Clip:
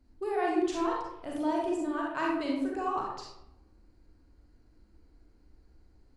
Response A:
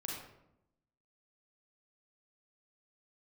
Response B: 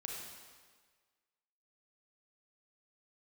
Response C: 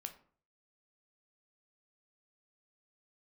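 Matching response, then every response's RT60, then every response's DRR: A; 0.85, 1.6, 0.50 seconds; −3.0, −1.5, 6.0 decibels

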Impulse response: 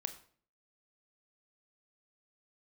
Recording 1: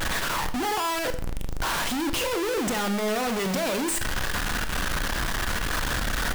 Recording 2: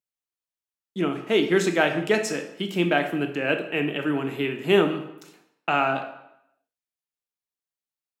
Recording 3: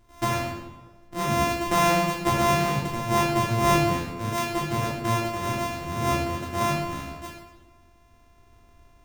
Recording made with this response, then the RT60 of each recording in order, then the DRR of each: 1; 0.50, 0.80, 1.3 seconds; 8.0, 6.0, −4.5 decibels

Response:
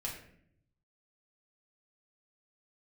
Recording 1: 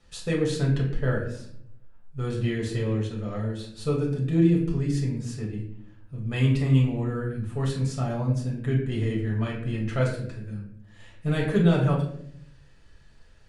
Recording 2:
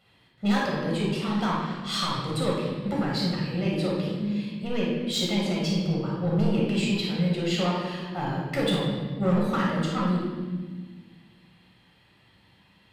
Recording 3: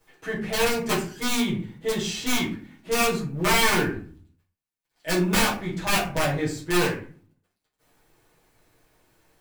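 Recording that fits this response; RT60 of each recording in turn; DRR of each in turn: 1; 0.65, 1.4, 0.45 seconds; −4.0, −4.0, −9.5 decibels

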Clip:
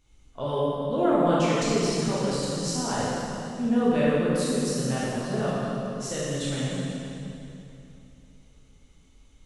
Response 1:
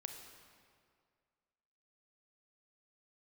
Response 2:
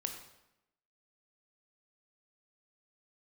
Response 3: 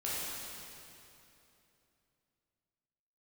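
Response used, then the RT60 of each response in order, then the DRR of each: 3; 2.1, 0.90, 2.9 seconds; 4.5, 4.5, −8.5 decibels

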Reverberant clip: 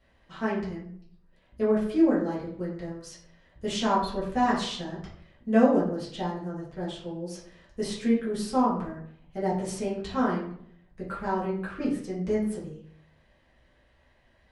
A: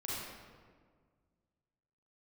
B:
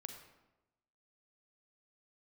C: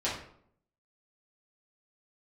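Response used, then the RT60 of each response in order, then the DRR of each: C; 1.7, 1.0, 0.65 seconds; −7.5, 5.0, −8.5 decibels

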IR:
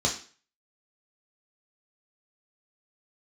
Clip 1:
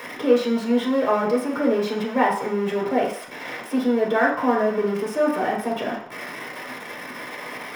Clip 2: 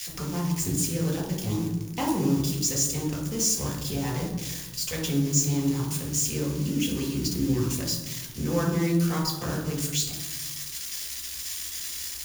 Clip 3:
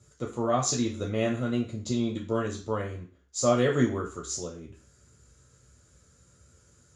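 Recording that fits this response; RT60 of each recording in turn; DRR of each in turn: 3; 0.60, 1.2, 0.40 seconds; −4.0, −2.0, −1.5 decibels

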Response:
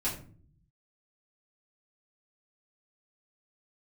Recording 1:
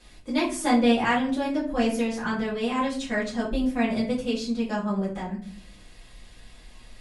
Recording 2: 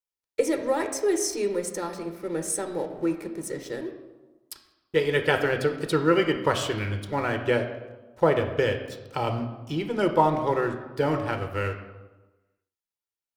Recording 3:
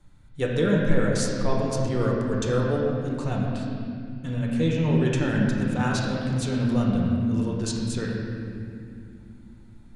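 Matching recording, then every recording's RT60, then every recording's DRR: 1; 0.50, 1.2, 2.5 seconds; −8.5, 6.0, −2.5 decibels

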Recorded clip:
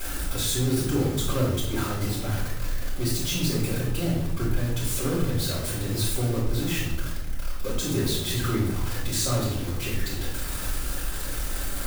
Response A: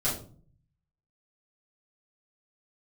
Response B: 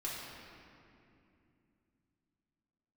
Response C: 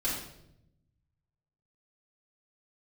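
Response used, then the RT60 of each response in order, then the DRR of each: C; 0.45, 2.6, 0.80 seconds; −10.0, −6.5, −8.0 decibels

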